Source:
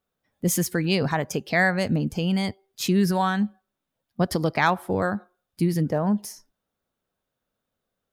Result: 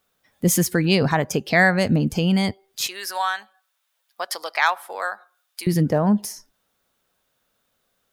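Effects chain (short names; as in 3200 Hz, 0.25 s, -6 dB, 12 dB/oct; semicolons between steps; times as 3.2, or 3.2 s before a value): 2.87–5.67 Bessel high-pass 990 Hz, order 4; mismatched tape noise reduction encoder only; gain +4.5 dB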